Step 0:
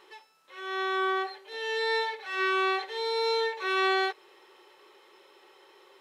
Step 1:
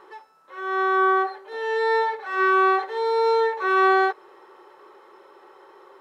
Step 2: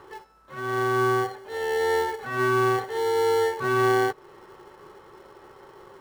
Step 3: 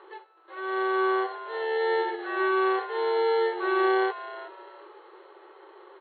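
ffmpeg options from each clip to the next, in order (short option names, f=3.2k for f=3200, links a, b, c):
-af "highshelf=f=1.9k:t=q:w=1.5:g=-10.5,volume=7.5dB"
-filter_complex "[0:a]acrossover=split=390[a][b];[b]acompressor=threshold=-34dB:ratio=1.5[c];[a][c]amix=inputs=2:normalize=0,asplit=2[d][e];[e]acrusher=samples=35:mix=1:aa=0.000001,volume=-7dB[f];[d][f]amix=inputs=2:normalize=0"
-filter_complex "[0:a]asplit=4[a][b][c][d];[b]adelay=371,afreqshift=-96,volume=-12dB[e];[c]adelay=742,afreqshift=-192,volume=-21.9dB[f];[d]adelay=1113,afreqshift=-288,volume=-31.8dB[g];[a][e][f][g]amix=inputs=4:normalize=0,afftfilt=real='re*between(b*sr/4096,320,4400)':imag='im*between(b*sr/4096,320,4400)':win_size=4096:overlap=0.75,volume=-2dB"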